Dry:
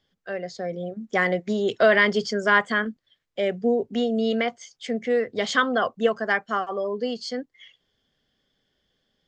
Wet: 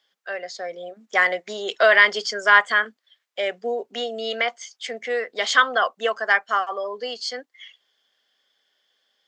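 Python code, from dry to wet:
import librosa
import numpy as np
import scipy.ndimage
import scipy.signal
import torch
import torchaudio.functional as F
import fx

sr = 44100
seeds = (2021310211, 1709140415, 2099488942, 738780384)

y = scipy.signal.sosfilt(scipy.signal.butter(2, 760.0, 'highpass', fs=sr, output='sos'), x)
y = y * 10.0 ** (5.5 / 20.0)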